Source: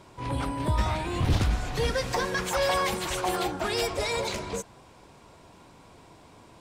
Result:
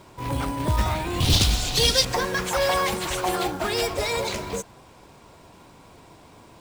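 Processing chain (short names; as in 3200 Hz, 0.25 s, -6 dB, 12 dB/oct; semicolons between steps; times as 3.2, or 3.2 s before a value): 1.2–2.05 resonant high shelf 2500 Hz +12 dB, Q 1.5; short-mantissa float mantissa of 2-bit; gain +3 dB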